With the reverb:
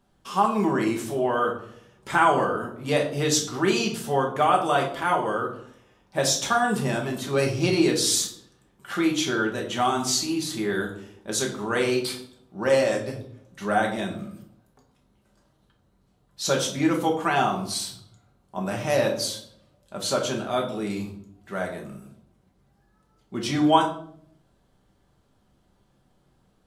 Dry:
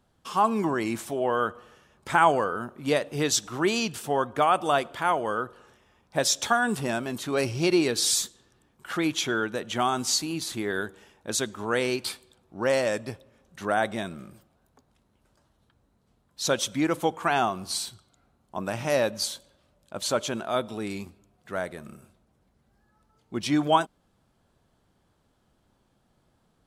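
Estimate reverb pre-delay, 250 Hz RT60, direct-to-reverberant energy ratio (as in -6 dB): 5 ms, 0.85 s, 0.0 dB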